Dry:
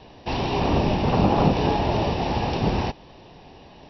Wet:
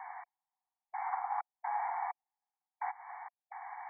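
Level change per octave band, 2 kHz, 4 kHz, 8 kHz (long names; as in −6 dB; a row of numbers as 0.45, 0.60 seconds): −13.5 dB, below −40 dB, can't be measured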